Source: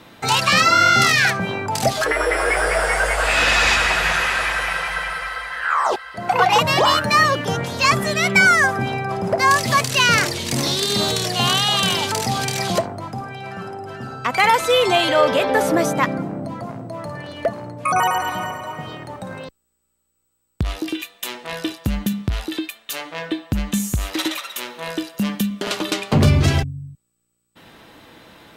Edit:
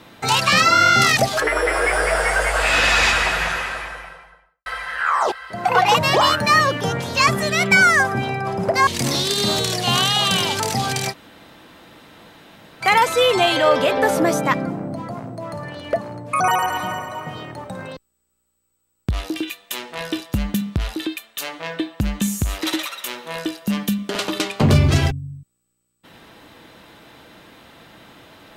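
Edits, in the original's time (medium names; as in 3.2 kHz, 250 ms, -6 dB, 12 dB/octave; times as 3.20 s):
1.17–1.81 s: delete
3.68–5.30 s: studio fade out
9.51–10.39 s: delete
12.63–14.34 s: room tone, crossfade 0.06 s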